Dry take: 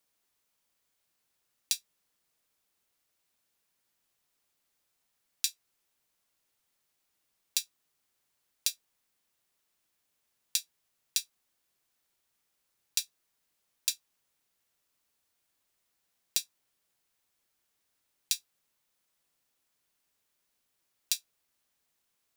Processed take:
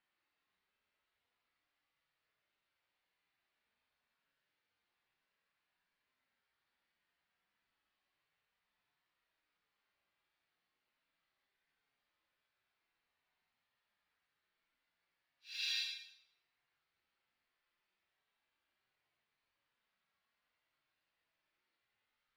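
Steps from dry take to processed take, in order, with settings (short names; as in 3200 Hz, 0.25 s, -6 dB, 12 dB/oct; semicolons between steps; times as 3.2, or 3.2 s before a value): EQ curve 460 Hz 0 dB, 1900 Hz +7 dB, 4500 Hz -2 dB, 7700 Hz -27 dB; Paulstretch 5.7×, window 0.10 s, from 2.69; gain -5 dB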